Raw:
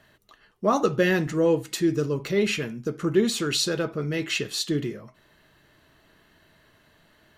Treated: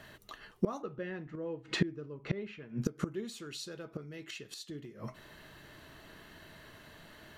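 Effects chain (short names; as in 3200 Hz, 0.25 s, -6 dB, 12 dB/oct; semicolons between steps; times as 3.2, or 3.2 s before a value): 0.82–2.82 LPF 2400 Hz 12 dB/oct; flipped gate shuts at -22 dBFS, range -24 dB; gain +5.5 dB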